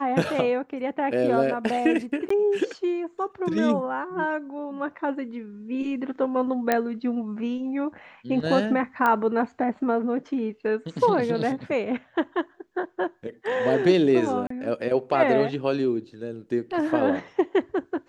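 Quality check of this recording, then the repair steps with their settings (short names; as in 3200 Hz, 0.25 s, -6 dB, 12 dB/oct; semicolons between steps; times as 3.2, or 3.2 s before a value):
2.29–2.3 gap 14 ms
6.72 pop -8 dBFS
9.06 pop -12 dBFS
14.47–14.5 gap 34 ms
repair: de-click; interpolate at 2.29, 14 ms; interpolate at 14.47, 34 ms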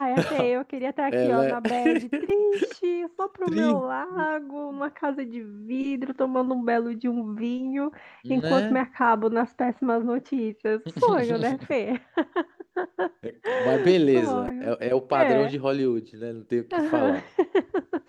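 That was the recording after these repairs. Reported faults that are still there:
none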